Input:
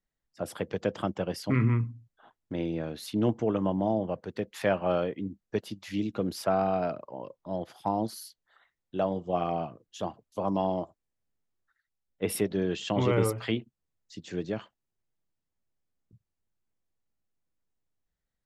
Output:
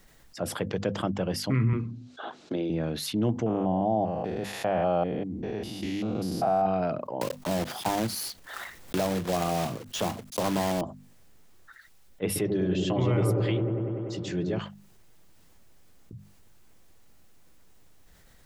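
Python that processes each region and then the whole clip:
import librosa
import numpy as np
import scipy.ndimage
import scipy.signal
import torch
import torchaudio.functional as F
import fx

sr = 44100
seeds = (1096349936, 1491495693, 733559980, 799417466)

y = fx.chain(x, sr, fx.cabinet(low_hz=260.0, low_slope=12, high_hz=6600.0, hz=(360.0, 980.0, 1900.0, 4000.0), db=(4, -7, -7, 6)),
    fx.band_squash(depth_pct=70), at=(1.73, 2.7))
y = fx.chain(y, sr, fx.spec_steps(hold_ms=200),
    fx.peak_eq(hz=750.0, db=11.5, octaves=0.37), at=(3.46, 6.66))
y = fx.chain(y, sr, fx.block_float(bits=3),
    fx.band_squash(depth_pct=70), at=(7.21, 10.82))
y = fx.chain(y, sr, fx.notch_comb(f0_hz=230.0),
    fx.echo_wet_lowpass(ms=97, feedback_pct=74, hz=750.0, wet_db=-3), at=(12.26, 14.59))
y = fx.hum_notches(y, sr, base_hz=50, count=5)
y = fx.dynamic_eq(y, sr, hz=130.0, q=0.9, threshold_db=-42.0, ratio=4.0, max_db=5)
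y = fx.env_flatten(y, sr, amount_pct=50)
y = y * 10.0 ** (-4.5 / 20.0)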